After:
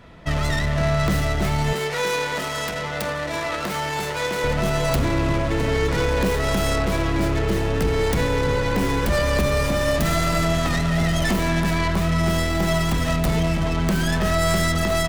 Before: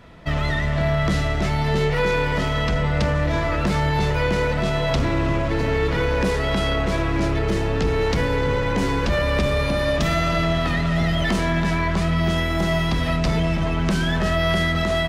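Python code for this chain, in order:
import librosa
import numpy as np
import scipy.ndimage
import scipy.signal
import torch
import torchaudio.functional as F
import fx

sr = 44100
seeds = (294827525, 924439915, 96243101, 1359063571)

y = fx.tracing_dist(x, sr, depth_ms=0.44)
y = fx.highpass(y, sr, hz=530.0, slope=6, at=(1.73, 4.44))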